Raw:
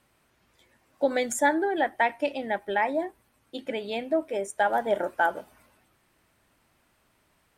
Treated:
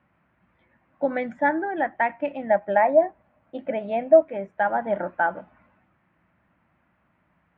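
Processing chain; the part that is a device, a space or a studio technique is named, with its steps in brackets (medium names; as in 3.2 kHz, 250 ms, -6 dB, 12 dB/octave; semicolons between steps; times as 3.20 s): 2.49–4.22 s: peaking EQ 630 Hz +12 dB 0.56 oct; bass cabinet (cabinet simulation 62–2200 Hz, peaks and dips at 68 Hz +4 dB, 180 Hz +9 dB, 420 Hz -9 dB); trim +1.5 dB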